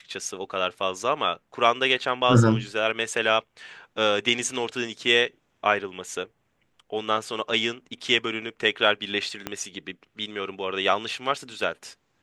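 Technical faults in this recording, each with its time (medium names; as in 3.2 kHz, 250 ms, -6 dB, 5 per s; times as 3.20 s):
9.47 s: pop -13 dBFS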